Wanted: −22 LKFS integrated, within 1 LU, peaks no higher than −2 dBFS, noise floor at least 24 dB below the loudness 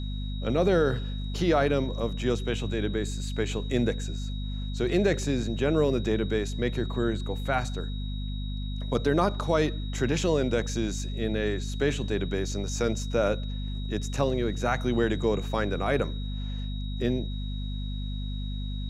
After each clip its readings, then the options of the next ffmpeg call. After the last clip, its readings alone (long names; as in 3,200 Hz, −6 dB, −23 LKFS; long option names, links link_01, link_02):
mains hum 50 Hz; hum harmonics up to 250 Hz; level of the hum −30 dBFS; interfering tone 3,800 Hz; level of the tone −44 dBFS; integrated loudness −28.5 LKFS; sample peak −11.5 dBFS; target loudness −22.0 LKFS
→ -af "bandreject=frequency=50:width_type=h:width=4,bandreject=frequency=100:width_type=h:width=4,bandreject=frequency=150:width_type=h:width=4,bandreject=frequency=200:width_type=h:width=4,bandreject=frequency=250:width_type=h:width=4"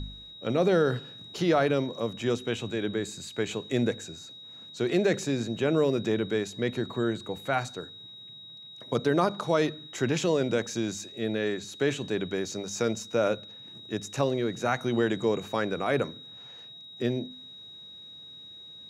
mains hum none found; interfering tone 3,800 Hz; level of the tone −44 dBFS
→ -af "bandreject=frequency=3800:width=30"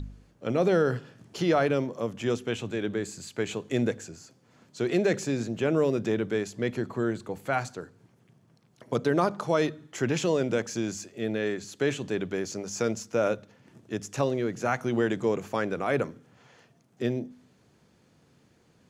interfering tone none found; integrated loudness −29.0 LKFS; sample peak −12.5 dBFS; target loudness −22.0 LKFS
→ -af "volume=7dB"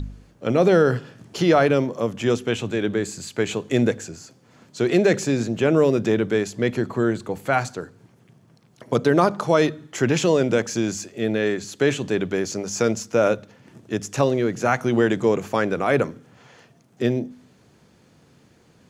integrated loudness −22.0 LKFS; sample peak −5.5 dBFS; background noise floor −56 dBFS